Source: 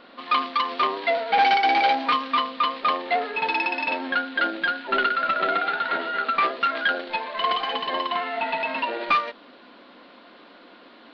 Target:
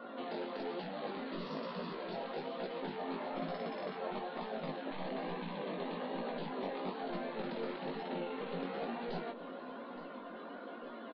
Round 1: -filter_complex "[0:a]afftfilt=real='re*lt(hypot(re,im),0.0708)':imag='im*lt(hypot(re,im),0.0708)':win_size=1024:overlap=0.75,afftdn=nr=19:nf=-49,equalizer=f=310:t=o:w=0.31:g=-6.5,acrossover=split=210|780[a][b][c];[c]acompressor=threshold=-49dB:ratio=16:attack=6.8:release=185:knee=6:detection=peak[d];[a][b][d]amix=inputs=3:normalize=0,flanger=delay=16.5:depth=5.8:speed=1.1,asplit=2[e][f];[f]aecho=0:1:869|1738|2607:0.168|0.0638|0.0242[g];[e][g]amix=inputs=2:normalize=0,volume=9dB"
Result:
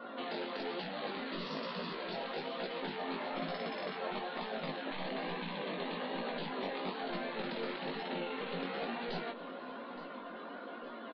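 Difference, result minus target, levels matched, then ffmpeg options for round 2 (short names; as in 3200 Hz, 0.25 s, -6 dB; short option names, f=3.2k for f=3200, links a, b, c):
compressor: peak gain reduction -7 dB
-filter_complex "[0:a]afftfilt=real='re*lt(hypot(re,im),0.0708)':imag='im*lt(hypot(re,im),0.0708)':win_size=1024:overlap=0.75,afftdn=nr=19:nf=-49,equalizer=f=310:t=o:w=0.31:g=-6.5,acrossover=split=210|780[a][b][c];[c]acompressor=threshold=-56.5dB:ratio=16:attack=6.8:release=185:knee=6:detection=peak[d];[a][b][d]amix=inputs=3:normalize=0,flanger=delay=16.5:depth=5.8:speed=1.1,asplit=2[e][f];[f]aecho=0:1:869|1738|2607:0.168|0.0638|0.0242[g];[e][g]amix=inputs=2:normalize=0,volume=9dB"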